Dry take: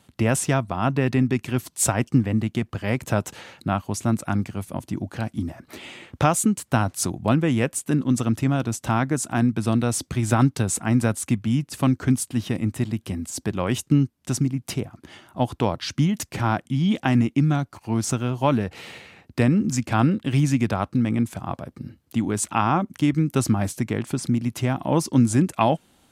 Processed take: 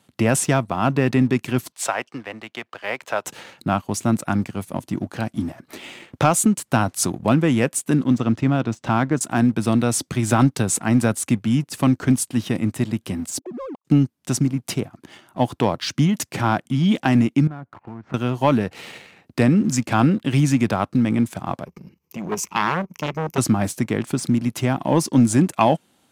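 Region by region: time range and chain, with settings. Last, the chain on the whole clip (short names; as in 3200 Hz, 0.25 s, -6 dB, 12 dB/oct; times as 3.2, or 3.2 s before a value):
1.72–3.25 HPF 60 Hz + three-band isolator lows -23 dB, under 480 Hz, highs -13 dB, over 5000 Hz
8.1–9.21 de-esser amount 60% + air absorption 110 m
13.39–13.85 sine-wave speech + steep low-pass 1100 Hz 96 dB/oct + level quantiser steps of 17 dB
17.47–18.14 LPF 1900 Hz 24 dB/oct + dynamic EQ 370 Hz, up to -4 dB, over -35 dBFS, Q 0.97 + compressor, threshold -33 dBFS
21.65–23.38 ripple EQ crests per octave 0.79, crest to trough 14 dB + level quantiser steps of 10 dB + core saturation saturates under 1600 Hz
whole clip: HPF 120 Hz 12 dB/oct; sample leveller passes 1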